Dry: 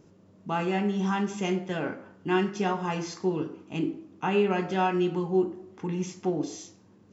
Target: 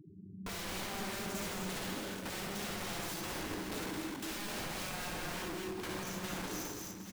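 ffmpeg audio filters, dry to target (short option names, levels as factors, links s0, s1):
-filter_complex "[0:a]afftfilt=real='re*gte(hypot(re,im),0.00891)':imag='im*gte(hypot(re,im),0.00891)':win_size=1024:overlap=0.75,acompressor=threshold=0.0158:ratio=12,aeval=exprs='(mod(106*val(0)+1,2)-1)/106':c=same,asplit=2[s0][s1];[s1]aecho=0:1:59|69|160|255|562|815:0.562|0.562|0.266|0.531|0.15|0.188[s2];[s0][s2]amix=inputs=2:normalize=0,acrossover=split=490[s3][s4];[s4]acompressor=threshold=0.00398:ratio=2[s5];[s3][s5]amix=inputs=2:normalize=0,asplit=2[s6][s7];[s7]aecho=0:1:217:0.447[s8];[s6][s8]amix=inputs=2:normalize=0,volume=1.78"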